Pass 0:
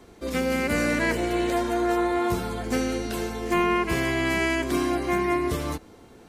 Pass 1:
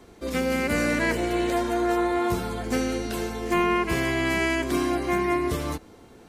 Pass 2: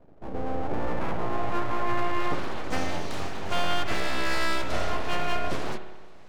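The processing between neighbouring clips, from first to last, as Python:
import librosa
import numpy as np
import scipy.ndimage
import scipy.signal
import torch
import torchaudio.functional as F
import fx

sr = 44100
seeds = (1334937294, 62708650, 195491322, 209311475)

y1 = x
y2 = fx.filter_sweep_lowpass(y1, sr, from_hz=340.0, to_hz=5100.0, start_s=0.37, end_s=2.72, q=0.85)
y2 = np.abs(y2)
y2 = fx.rev_spring(y2, sr, rt60_s=1.2, pass_ms=(57,), chirp_ms=25, drr_db=9.0)
y2 = F.gain(torch.from_numpy(y2), -1.0).numpy()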